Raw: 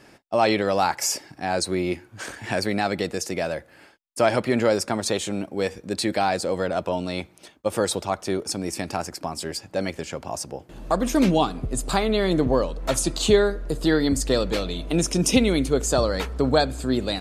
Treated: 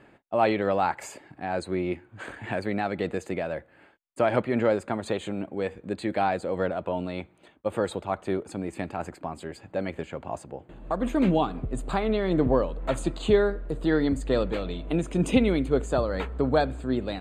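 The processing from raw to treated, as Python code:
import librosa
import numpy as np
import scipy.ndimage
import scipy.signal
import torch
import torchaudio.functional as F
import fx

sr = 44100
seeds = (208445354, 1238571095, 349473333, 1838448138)

y = np.convolve(x, np.full(8, 1.0 / 8))[:len(x)]
y = fx.am_noise(y, sr, seeds[0], hz=5.7, depth_pct=55)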